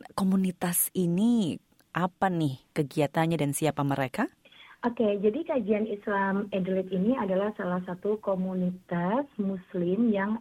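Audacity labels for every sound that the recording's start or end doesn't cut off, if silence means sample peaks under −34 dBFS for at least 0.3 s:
1.950000	4.260000	sound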